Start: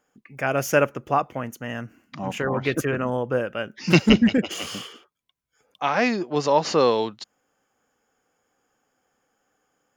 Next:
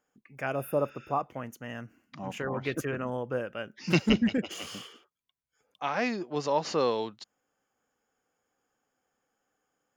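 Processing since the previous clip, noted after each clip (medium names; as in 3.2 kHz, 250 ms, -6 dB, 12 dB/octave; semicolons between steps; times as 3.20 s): spectral replace 0.57–1.18 s, 1.3–9.2 kHz after; trim -8 dB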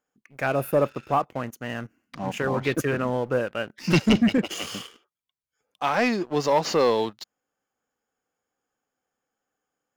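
waveshaping leveller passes 2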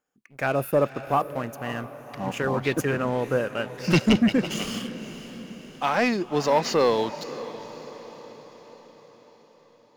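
echo that smears into a reverb 551 ms, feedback 54%, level -14 dB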